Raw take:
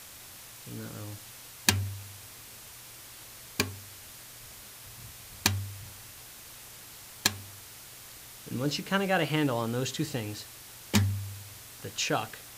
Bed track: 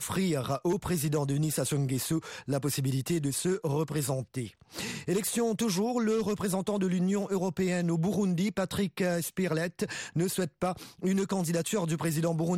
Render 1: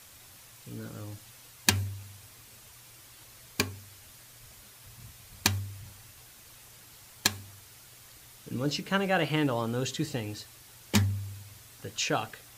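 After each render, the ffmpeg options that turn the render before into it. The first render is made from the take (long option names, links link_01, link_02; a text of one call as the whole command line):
ffmpeg -i in.wav -af "afftdn=noise_reduction=6:noise_floor=-48" out.wav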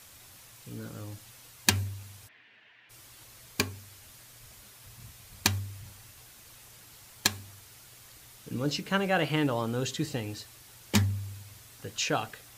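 ffmpeg -i in.wav -filter_complex "[0:a]asplit=3[link_01][link_02][link_03];[link_01]afade=type=out:start_time=2.27:duration=0.02[link_04];[link_02]highpass=350,equalizer=frequency=370:width_type=q:width=4:gain=-5,equalizer=frequency=530:width_type=q:width=4:gain=-9,equalizer=frequency=840:width_type=q:width=4:gain=-5,equalizer=frequency=1200:width_type=q:width=4:gain=-10,equalizer=frequency=1800:width_type=q:width=4:gain=9,equalizer=frequency=2900:width_type=q:width=4:gain=4,lowpass=frequency=2900:width=0.5412,lowpass=frequency=2900:width=1.3066,afade=type=in:start_time=2.27:duration=0.02,afade=type=out:start_time=2.89:duration=0.02[link_05];[link_03]afade=type=in:start_time=2.89:duration=0.02[link_06];[link_04][link_05][link_06]amix=inputs=3:normalize=0" out.wav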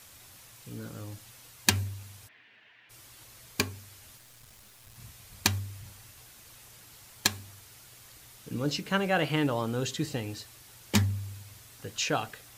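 ffmpeg -i in.wav -filter_complex "[0:a]asettb=1/sr,asplit=3[link_01][link_02][link_03];[link_01]atrim=end=4.174[link_04];[link_02]atrim=start=4.17:end=4.96,asetpts=PTS-STARTPTS,afade=type=in:duration=0.004:curve=qsin,afade=type=out:start_time=0.786:duration=0.004:curve=qsin,aeval=exprs='clip(val(0),-1,0.00112)':channel_layout=same[link_05];[link_03]atrim=start=4.956[link_06];[link_04][link_05]acrossfade=duration=0.004:curve1=hsin:curve2=qsin[link_07];[link_07][link_06]acrossfade=duration=0.004:curve1=qsin:curve2=hsin" out.wav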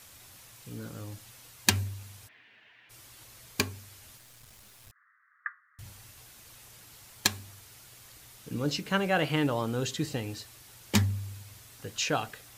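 ffmpeg -i in.wav -filter_complex "[0:a]asettb=1/sr,asplit=3[link_01][link_02][link_03];[link_01]atrim=end=4.914[link_04];[link_02]atrim=start=4.91:end=5.79,asetpts=PTS-STARTPTS,afade=type=in:duration=0.004:curve=qsin,afade=type=out:start_time=0.876:duration=0.004:curve=qsin,asuperpass=centerf=1500:order=12:qfactor=1.9[link_05];[link_03]atrim=start=5.786[link_06];[link_04][link_05]acrossfade=duration=0.004:curve1=hsin:curve2=qsin[link_07];[link_07][link_06]acrossfade=duration=0.004:curve1=qsin:curve2=hsin" out.wav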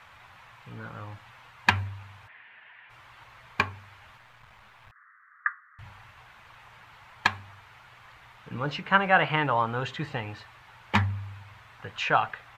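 ffmpeg -i in.wav -af "firequalizer=gain_entry='entry(180,0);entry(270,-7);entry(900,12);entry(2300,6);entry(5100,-13);entry(9900,-23)':delay=0.05:min_phase=1" out.wav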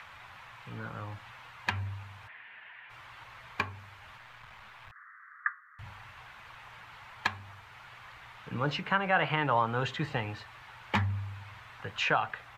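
ffmpeg -i in.wav -filter_complex "[0:a]acrossover=split=150|870|5300[link_01][link_02][link_03][link_04];[link_03]acompressor=mode=upward:threshold=-46dB:ratio=2.5[link_05];[link_01][link_02][link_05][link_04]amix=inputs=4:normalize=0,alimiter=limit=-14.5dB:level=0:latency=1:release=232" out.wav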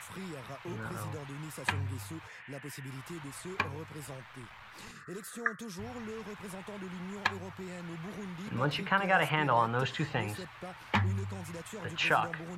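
ffmpeg -i in.wav -i bed.wav -filter_complex "[1:a]volume=-14.5dB[link_01];[0:a][link_01]amix=inputs=2:normalize=0" out.wav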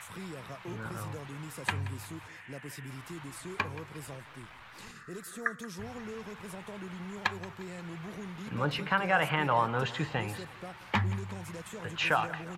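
ffmpeg -i in.wav -af "aecho=1:1:177|354|531|708:0.133|0.068|0.0347|0.0177" out.wav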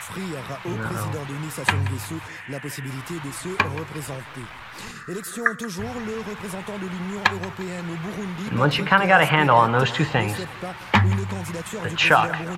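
ffmpeg -i in.wav -af "volume=11.5dB,alimiter=limit=-3dB:level=0:latency=1" out.wav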